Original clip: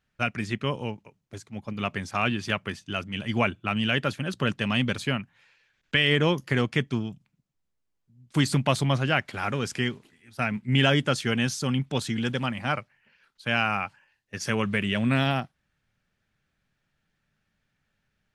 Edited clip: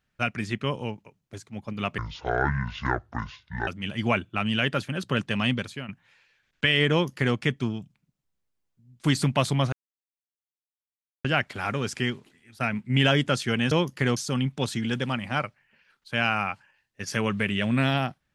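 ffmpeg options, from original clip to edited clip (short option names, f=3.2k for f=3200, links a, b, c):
-filter_complex "[0:a]asplit=7[a][b][c][d][e][f][g];[a]atrim=end=1.984[h];[b]atrim=start=1.98:end=2.98,asetpts=PTS-STARTPTS,asetrate=26019,aresample=44100[i];[c]atrim=start=2.976:end=5.19,asetpts=PTS-STARTPTS,afade=t=out:st=1.844:d=0.37:c=qua:silence=0.298538[j];[d]atrim=start=5.19:end=9.03,asetpts=PTS-STARTPTS,afade=t=in:d=0.004:c=hsin:silence=0.298538,afade=t=out:st=3.836:d=0.004:c=hsin,apad=pad_dur=1.52[k];[e]atrim=start=9.03:end=11.502,asetpts=PTS-STARTPTS,afade=t=in:d=0.004:c=hsin[l];[f]atrim=start=6.218:end=6.672[m];[g]atrim=start=11.498[n];[h][i]acrossfade=d=0.004:c1=hsin:c2=hsin[o];[j][k][l]concat=n=3:v=0:a=1[p];[o][p]acrossfade=d=0.004:c1=hsin:c2=hsin[q];[q][m]acrossfade=d=0.004:c1=hsin:c2=hsin[r];[r][n]acrossfade=d=0.004:c1=hsin:c2=hsin"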